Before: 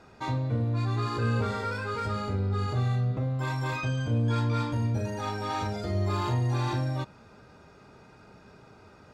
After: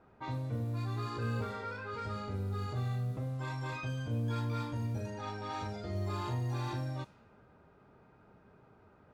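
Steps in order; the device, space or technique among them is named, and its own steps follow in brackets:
0:01.44–0:01.93: bass and treble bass −4 dB, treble −5 dB
cassette deck with a dynamic noise filter (white noise bed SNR 30 dB; low-pass that shuts in the quiet parts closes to 1,400 Hz, open at −24 dBFS)
level −8 dB

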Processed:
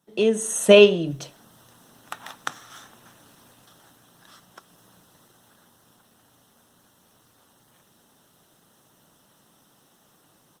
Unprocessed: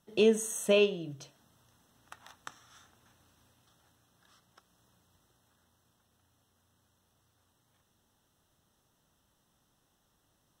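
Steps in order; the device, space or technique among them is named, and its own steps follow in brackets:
video call (high-pass filter 130 Hz 24 dB per octave; automatic gain control gain up to 14 dB; level +2 dB; Opus 24 kbit/s 48,000 Hz)

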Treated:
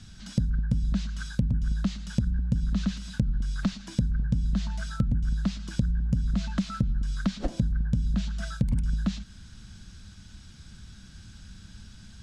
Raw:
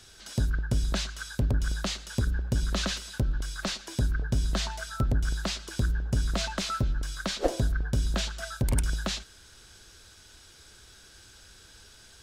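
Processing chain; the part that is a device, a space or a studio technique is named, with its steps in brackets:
jukebox (low-pass filter 7,600 Hz 12 dB per octave; low shelf with overshoot 290 Hz +12.5 dB, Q 3; downward compressor 5 to 1, threshold −22 dBFS, peak gain reduction 14 dB)
level −1.5 dB

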